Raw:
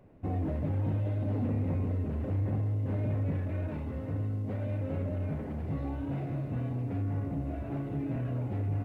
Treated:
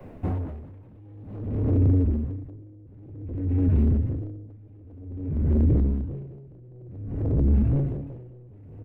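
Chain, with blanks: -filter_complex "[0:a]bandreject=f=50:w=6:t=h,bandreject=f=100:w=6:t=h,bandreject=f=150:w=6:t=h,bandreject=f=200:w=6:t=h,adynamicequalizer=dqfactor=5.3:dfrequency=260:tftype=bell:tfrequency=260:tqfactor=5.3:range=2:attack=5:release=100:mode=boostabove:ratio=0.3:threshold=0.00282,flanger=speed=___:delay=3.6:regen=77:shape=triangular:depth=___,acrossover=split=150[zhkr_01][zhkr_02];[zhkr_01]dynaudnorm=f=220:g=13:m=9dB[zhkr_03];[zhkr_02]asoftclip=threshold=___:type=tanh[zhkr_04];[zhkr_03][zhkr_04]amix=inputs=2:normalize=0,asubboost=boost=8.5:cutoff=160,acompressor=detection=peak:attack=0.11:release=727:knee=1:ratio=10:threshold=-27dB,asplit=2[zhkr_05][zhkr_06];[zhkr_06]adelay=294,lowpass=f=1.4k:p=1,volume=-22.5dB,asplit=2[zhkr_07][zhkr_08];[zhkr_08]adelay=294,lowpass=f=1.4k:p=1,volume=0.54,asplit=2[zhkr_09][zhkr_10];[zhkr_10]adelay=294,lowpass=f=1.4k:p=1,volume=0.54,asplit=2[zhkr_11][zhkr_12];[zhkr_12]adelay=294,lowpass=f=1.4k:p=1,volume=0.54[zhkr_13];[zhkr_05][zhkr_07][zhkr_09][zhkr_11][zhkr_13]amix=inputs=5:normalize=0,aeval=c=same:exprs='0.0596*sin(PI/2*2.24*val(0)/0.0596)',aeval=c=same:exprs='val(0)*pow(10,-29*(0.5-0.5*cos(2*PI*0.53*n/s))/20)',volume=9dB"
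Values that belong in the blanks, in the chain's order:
1.8, 1.6, -37dB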